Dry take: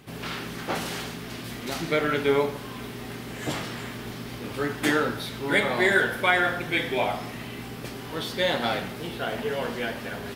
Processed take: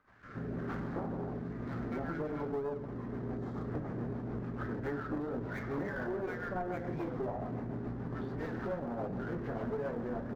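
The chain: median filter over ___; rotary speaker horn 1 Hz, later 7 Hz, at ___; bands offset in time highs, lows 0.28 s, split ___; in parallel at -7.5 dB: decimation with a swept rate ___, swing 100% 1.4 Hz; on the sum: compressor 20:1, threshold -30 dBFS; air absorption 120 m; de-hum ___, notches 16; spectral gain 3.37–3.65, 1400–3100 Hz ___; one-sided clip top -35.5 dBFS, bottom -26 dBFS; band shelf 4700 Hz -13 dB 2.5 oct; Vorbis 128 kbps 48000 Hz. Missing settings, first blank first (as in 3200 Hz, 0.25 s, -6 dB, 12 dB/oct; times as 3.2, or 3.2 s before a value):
15 samples, 1.75, 1100 Hz, 41×, 160.1 Hz, -8 dB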